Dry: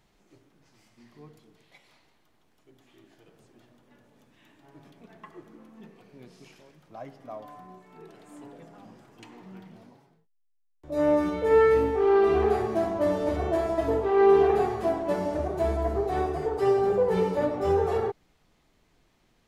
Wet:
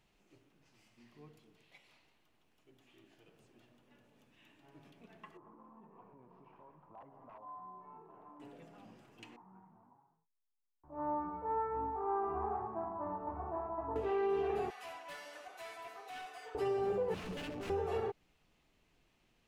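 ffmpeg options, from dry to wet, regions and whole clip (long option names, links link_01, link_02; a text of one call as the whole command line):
ffmpeg -i in.wav -filter_complex "[0:a]asettb=1/sr,asplit=3[link_01][link_02][link_03];[link_01]atrim=end=5.374[link_04];[link_02]atrim=start=5.37:end=8.4,asetpts=PTS-STARTPTS,afade=type=in:duration=0.004:curve=qsin,afade=type=out:start_time=3.026:duration=0.004:curve=qsin,aeval=exprs='(mod(44.7*val(0)+1,2)-1)/44.7':channel_layout=same,acompressor=threshold=-50dB:ratio=5:attack=3.2:release=140:knee=1:detection=peak,lowpass=frequency=1000:width_type=q:width=7.5[link_05];[link_03]atrim=start=8.396[link_06];[link_04][link_05]acrossfade=duration=0.004:curve1=hsin:curve2=qsin[link_07];[link_07][link_06]acrossfade=duration=0.004:curve1=qsin:curve2=hsin,asettb=1/sr,asplit=3[link_08][link_09][link_10];[link_08]atrim=end=9.364[link_11];[link_09]atrim=start=9.36:end=13.96,asetpts=PTS-STARTPTS,afade=type=in:duration=0.004:curve=qsin,afade=type=out:start_time=4.596:duration=0.004:curve=qsin,lowpass=frequency=1100:width=0.5412,lowpass=frequency=1100:width=1.3066,lowshelf=frequency=710:width_type=q:width=3:gain=-8[link_12];[link_10]atrim=start=13.956[link_13];[link_11][link_12]acrossfade=duration=0.004:curve1=hsin:curve2=qsin[link_14];[link_14][link_13]acrossfade=duration=0.004:curve1=qsin:curve2=hsin,asettb=1/sr,asplit=3[link_15][link_16][link_17];[link_15]atrim=end=14.704[link_18];[link_16]atrim=start=14.7:end=16.55,asetpts=PTS-STARTPTS,afade=type=in:duration=0.004:curve=qsin,afade=type=out:start_time=1.846:duration=0.004:curve=qsin,highpass=1400,aecho=1:1:4:0.68,atrim=end_sample=81585,asoftclip=type=hard:threshold=-36.5dB[link_19];[link_17]atrim=start=16.546[link_20];[link_18][link_19]acrossfade=duration=0.004:curve1=hsin:curve2=qsin[link_21];[link_21][link_20]acrossfade=duration=0.004:curve1=qsin:curve2=hsin,asettb=1/sr,asplit=3[link_22][link_23][link_24];[link_22]atrim=end=17.144[link_25];[link_23]atrim=start=17.14:end=17.7,asetpts=PTS-STARTPTS,afade=type=in:duration=0.004:curve=qsin,afade=type=out:start_time=0.556:duration=0.004:curve=qsin,aeval=exprs='0.0473*(abs(mod(val(0)/0.0473+3,4)-2)-1)':channel_layout=same,acrossover=split=390|3000[link_26][link_27][link_28];[link_27]acompressor=threshold=-43dB:ratio=3:attack=3.2:release=140:knee=2.83:detection=peak[link_29];[link_26][link_29][link_28]amix=inputs=3:normalize=0[link_30];[link_24]atrim=start=17.696[link_31];[link_25][link_30]acrossfade=duration=0.004:curve1=hsin:curve2=qsin[link_32];[link_32][link_31]acrossfade=duration=0.004:curve1=qsin:curve2=hsin,equalizer=frequency=2700:width_type=o:width=0.4:gain=7.5,alimiter=limit=-19.5dB:level=0:latency=1:release=226,volume=-7.5dB" out.wav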